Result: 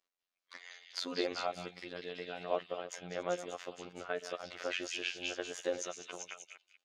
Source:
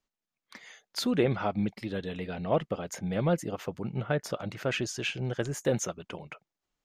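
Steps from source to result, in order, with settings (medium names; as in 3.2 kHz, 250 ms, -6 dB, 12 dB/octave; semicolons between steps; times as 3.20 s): chunks repeated in reverse 140 ms, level -13 dB; three-band isolator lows -23 dB, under 330 Hz, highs -19 dB, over 7.6 kHz; band-stop 900 Hz, Q 15; in parallel at -1 dB: compression, threshold -42 dBFS, peak gain reduction 18.5 dB; on the sum: robot voice 88.8 Hz; on a send: repeats whose band climbs or falls 195 ms, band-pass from 3.4 kHz, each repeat 0.7 oct, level -1 dB; on the sum: trim -5 dB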